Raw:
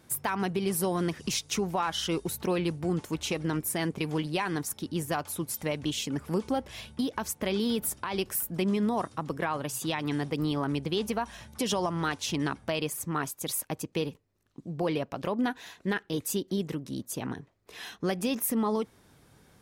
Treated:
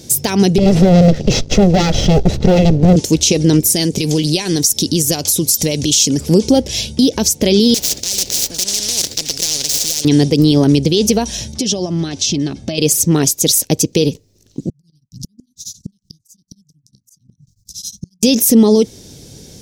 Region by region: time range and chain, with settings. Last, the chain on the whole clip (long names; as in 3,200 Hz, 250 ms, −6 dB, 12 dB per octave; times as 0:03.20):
0:00.58–0:02.96: lower of the sound and its delayed copy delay 1.5 ms + low-pass filter 1,600 Hz + leveller curve on the samples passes 2
0:03.72–0:06.21: high-shelf EQ 3,700 Hz +9 dB + downward compressor 4 to 1, threshold −32 dBFS
0:07.74–0:10.05: running median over 15 samples + low-shelf EQ 290 Hz −11 dB + every bin compressed towards the loudest bin 10 to 1
0:11.52–0:12.78: downward compressor 4 to 1, threshold −35 dBFS + high-frequency loss of the air 62 metres + notch comb filter 480 Hz
0:14.69–0:18.23: inverse Chebyshev band-stop filter 630–1,500 Hz, stop band 80 dB + gate with flip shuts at −35 dBFS, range −34 dB + tremolo along a rectified sine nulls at 11 Hz
whole clip: drawn EQ curve 490 Hz 0 dB, 1,200 Hz −20 dB, 5,900 Hz +11 dB, 9,600 Hz −1 dB; boost into a limiter +22 dB; level −1 dB